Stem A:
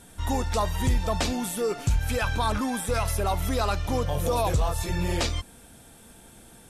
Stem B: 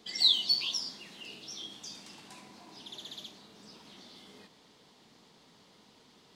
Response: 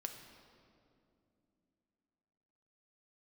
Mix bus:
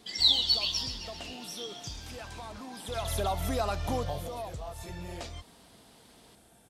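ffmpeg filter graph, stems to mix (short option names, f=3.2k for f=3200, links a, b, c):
-filter_complex "[0:a]highpass=40,equalizer=f=680:w=3.7:g=7.5,acompressor=threshold=-27dB:ratio=3,volume=-1dB,afade=t=in:st=2.82:d=0.32:silence=0.223872,afade=t=out:st=3.99:d=0.3:silence=0.334965[a];[1:a]volume=1dB,asplit=2[b][c];[c]volume=-10dB,aecho=0:1:133|266|399|532|665|798|931|1064:1|0.56|0.314|0.176|0.0983|0.0551|0.0308|0.0173[d];[a][b][d]amix=inputs=3:normalize=0"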